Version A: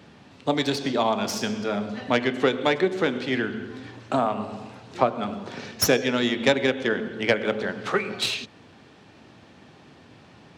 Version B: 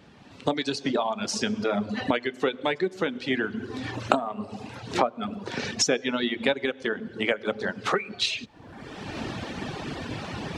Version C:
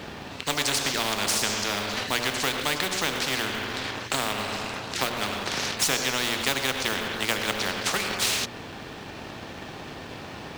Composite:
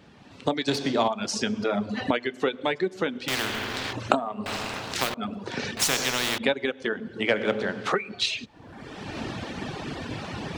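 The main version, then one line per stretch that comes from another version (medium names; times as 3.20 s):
B
0.68–1.08 s: from A
3.28–3.93 s: from C
4.46–5.14 s: from C
5.77–6.38 s: from C
7.32–7.87 s: from A, crossfade 0.10 s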